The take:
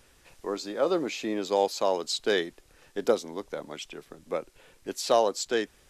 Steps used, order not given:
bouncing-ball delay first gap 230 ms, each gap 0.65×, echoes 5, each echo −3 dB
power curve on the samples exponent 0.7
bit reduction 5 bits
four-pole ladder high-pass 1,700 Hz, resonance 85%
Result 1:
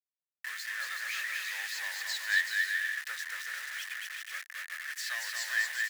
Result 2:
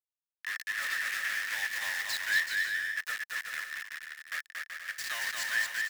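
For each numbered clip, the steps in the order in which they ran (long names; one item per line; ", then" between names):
power curve on the samples, then bouncing-ball delay, then bit reduction, then four-pole ladder high-pass
bit reduction, then four-pole ladder high-pass, then power curve on the samples, then bouncing-ball delay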